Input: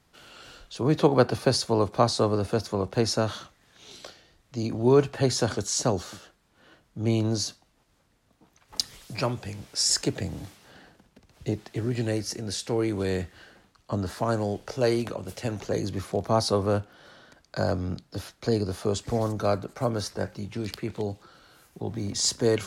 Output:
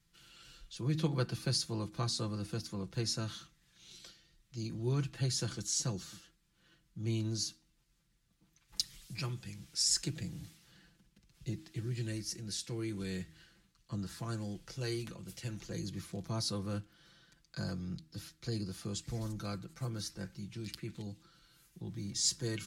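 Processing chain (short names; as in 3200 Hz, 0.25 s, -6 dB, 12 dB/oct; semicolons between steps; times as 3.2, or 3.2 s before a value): passive tone stack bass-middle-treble 6-0-2; comb 5.9 ms; de-hum 79.07 Hz, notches 4; gain +7 dB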